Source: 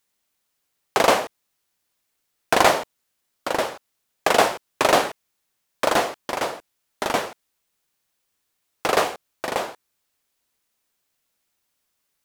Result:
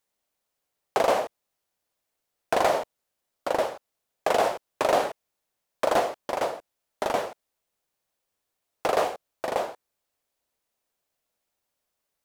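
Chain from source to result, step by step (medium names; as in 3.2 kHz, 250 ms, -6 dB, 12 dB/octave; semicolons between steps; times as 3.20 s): bass shelf 130 Hz +4.5 dB; hard clipper -5.5 dBFS, distortion -25 dB; peaking EQ 610 Hz +8.5 dB 1.3 oct; peak limiter -4 dBFS, peak gain reduction 6 dB; trim -7.5 dB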